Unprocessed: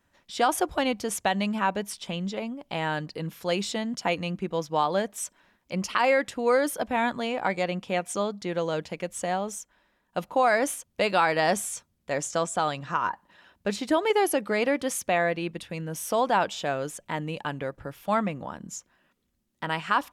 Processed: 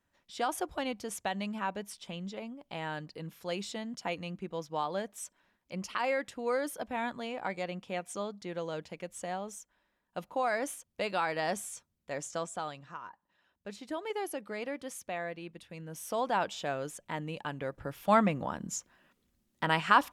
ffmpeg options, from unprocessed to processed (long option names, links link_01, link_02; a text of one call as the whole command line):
ffmpeg -i in.wav -af "volume=12dB,afade=type=out:start_time=12.37:duration=0.72:silence=0.281838,afade=type=in:start_time=13.09:duration=1.06:silence=0.446684,afade=type=in:start_time=15.58:duration=0.91:silence=0.446684,afade=type=in:start_time=17.56:duration=0.6:silence=0.446684" out.wav